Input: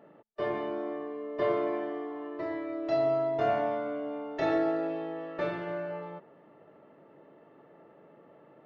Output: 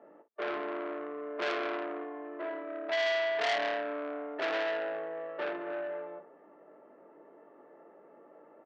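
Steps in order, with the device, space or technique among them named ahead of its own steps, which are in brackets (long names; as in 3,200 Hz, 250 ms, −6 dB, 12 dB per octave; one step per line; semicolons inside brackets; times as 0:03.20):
three-way crossover with the lows and the highs turned down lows −18 dB, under 210 Hz, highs −21 dB, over 2,200 Hz
ambience of single reflections 20 ms −6.5 dB, 56 ms −13 dB
0:02.04–0:02.54: low-shelf EQ 180 Hz −9 dB
public-address speaker with an overloaded transformer (saturating transformer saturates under 3,300 Hz; band-pass filter 200–5,000 Hz)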